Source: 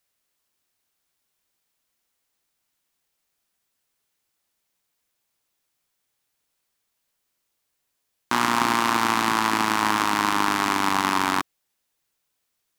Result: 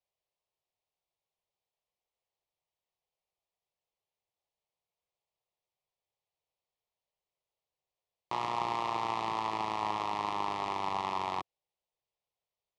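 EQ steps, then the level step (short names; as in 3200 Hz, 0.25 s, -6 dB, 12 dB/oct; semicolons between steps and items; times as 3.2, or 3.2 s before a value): Bessel low-pass 2200 Hz, order 2; low shelf 69 Hz -7 dB; fixed phaser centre 630 Hz, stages 4; -5.0 dB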